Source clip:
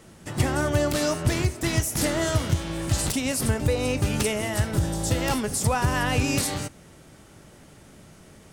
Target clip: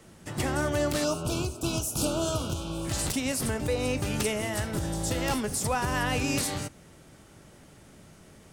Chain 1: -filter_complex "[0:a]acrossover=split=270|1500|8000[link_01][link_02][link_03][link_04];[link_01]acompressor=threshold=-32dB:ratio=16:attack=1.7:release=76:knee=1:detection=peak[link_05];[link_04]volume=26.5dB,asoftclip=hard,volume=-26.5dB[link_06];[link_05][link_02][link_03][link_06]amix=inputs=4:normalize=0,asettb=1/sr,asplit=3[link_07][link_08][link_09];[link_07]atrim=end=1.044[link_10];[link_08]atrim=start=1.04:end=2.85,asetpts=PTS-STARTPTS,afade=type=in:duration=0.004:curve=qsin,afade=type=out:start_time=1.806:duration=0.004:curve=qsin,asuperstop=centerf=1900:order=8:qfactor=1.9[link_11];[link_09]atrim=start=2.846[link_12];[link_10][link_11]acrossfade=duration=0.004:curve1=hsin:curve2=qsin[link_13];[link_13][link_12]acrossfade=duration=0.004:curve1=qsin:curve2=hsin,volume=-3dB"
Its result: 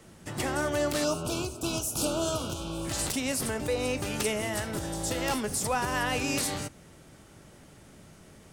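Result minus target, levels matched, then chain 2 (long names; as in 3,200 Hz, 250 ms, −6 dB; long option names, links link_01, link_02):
downward compressor: peak gain reduction +7 dB
-filter_complex "[0:a]acrossover=split=270|1500|8000[link_01][link_02][link_03][link_04];[link_01]acompressor=threshold=-24.5dB:ratio=16:attack=1.7:release=76:knee=1:detection=peak[link_05];[link_04]volume=26.5dB,asoftclip=hard,volume=-26.5dB[link_06];[link_05][link_02][link_03][link_06]amix=inputs=4:normalize=0,asettb=1/sr,asplit=3[link_07][link_08][link_09];[link_07]atrim=end=1.044[link_10];[link_08]atrim=start=1.04:end=2.85,asetpts=PTS-STARTPTS,afade=type=in:duration=0.004:curve=qsin,afade=type=out:start_time=1.806:duration=0.004:curve=qsin,asuperstop=centerf=1900:order=8:qfactor=1.9[link_11];[link_09]atrim=start=2.846[link_12];[link_10][link_11]acrossfade=duration=0.004:curve1=hsin:curve2=qsin[link_13];[link_13][link_12]acrossfade=duration=0.004:curve1=qsin:curve2=hsin,volume=-3dB"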